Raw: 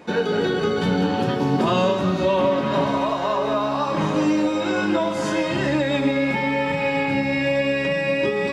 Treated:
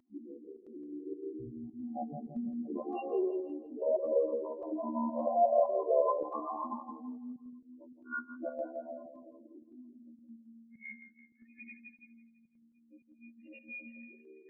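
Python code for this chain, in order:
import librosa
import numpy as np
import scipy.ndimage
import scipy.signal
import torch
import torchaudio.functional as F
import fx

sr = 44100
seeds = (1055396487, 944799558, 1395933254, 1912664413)

y = fx.doppler_pass(x, sr, speed_mps=5, closest_m=4.6, pass_at_s=2.79)
y = fx.low_shelf(y, sr, hz=65.0, db=12.0)
y = y + 0.97 * np.pad(y, (int(2.9 * sr / 1000.0), 0))[:len(y)]
y = fx.dynamic_eq(y, sr, hz=190.0, q=0.77, threshold_db=-33.0, ratio=4.0, max_db=-5)
y = fx.spec_topn(y, sr, count=2)
y = fx.stretch_grains(y, sr, factor=1.7, grain_ms=28.0)
y = fx.filter_sweep_highpass(y, sr, from_hz=69.0, to_hz=660.0, start_s=0.94, end_s=3.55, q=1.6)
y = fx.formant_shift(y, sr, semitones=-5)
y = fx.volume_shaper(y, sr, bpm=106, per_beat=1, depth_db=-12, release_ms=95.0, shape='slow start')
y = fx.echo_feedback(y, sr, ms=167, feedback_pct=39, wet_db=-7.0)
y = fx.comb_cascade(y, sr, direction='falling', hz=0.6)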